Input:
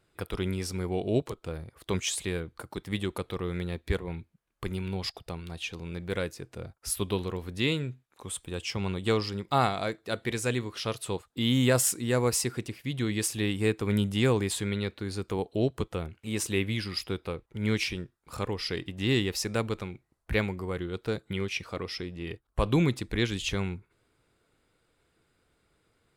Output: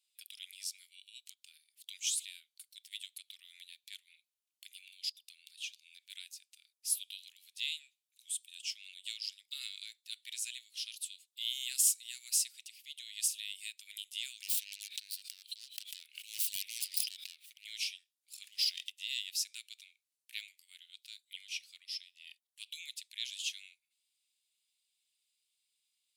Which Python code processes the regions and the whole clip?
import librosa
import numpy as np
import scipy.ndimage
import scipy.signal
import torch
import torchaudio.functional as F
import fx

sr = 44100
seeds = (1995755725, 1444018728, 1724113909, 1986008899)

y = fx.chain(x, sr, fx.self_delay(depth_ms=0.4),
    fx.peak_eq(hz=6700.0, db=-5.0, octaves=0.35),
    fx.sustainer(db_per_s=25.0), at=(14.42, 17.65))
y = fx.chain(y, sr, fx.over_compress(threshold_db=-34.0, ratio=-0.5),
    fx.leveller(passes=2), at=(18.43, 18.9))
y = scipy.signal.sosfilt(scipy.signal.butter(6, 2700.0, 'highpass', fs=sr, output='sos'), y)
y = fx.high_shelf(y, sr, hz=4600.0, db=5.0)
y = F.gain(torch.from_numpy(y), -5.0).numpy()